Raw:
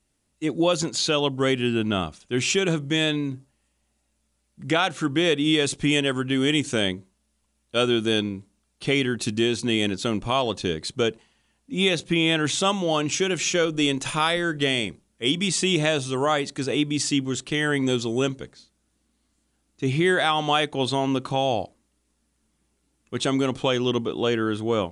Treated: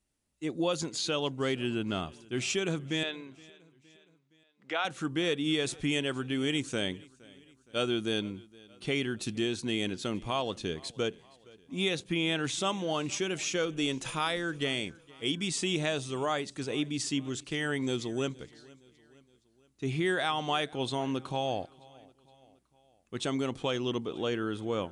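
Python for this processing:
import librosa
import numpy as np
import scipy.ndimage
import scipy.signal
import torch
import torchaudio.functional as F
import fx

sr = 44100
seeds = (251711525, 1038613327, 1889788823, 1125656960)

y = fx.bandpass_edges(x, sr, low_hz=510.0, high_hz=3800.0, at=(3.03, 4.85))
y = fx.echo_feedback(y, sr, ms=467, feedback_pct=53, wet_db=-23.5)
y = y * librosa.db_to_amplitude(-8.5)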